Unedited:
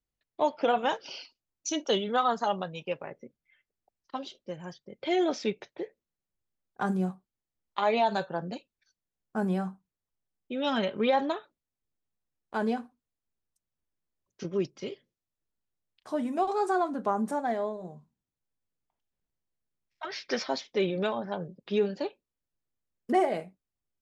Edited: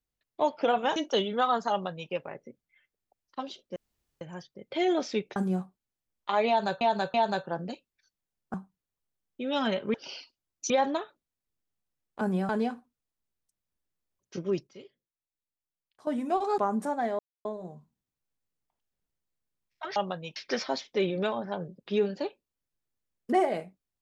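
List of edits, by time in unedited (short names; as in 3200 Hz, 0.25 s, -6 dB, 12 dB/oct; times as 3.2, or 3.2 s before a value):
0.96–1.72 move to 11.05
2.47–2.87 copy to 20.16
4.52 insert room tone 0.45 s
5.67–6.85 cut
7.97–8.3 loop, 3 plays
9.37–9.65 move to 12.56
14.74–16.14 gain -11 dB
16.65–17.04 cut
17.65 insert silence 0.26 s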